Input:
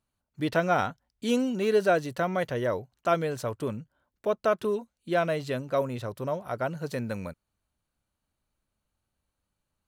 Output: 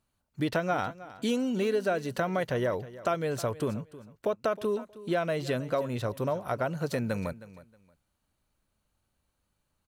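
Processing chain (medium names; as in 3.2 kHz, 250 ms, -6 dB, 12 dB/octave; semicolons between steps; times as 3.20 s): compression 4:1, threshold -30 dBFS, peak gain reduction 10.5 dB; feedback delay 315 ms, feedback 21%, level -17 dB; trim +4 dB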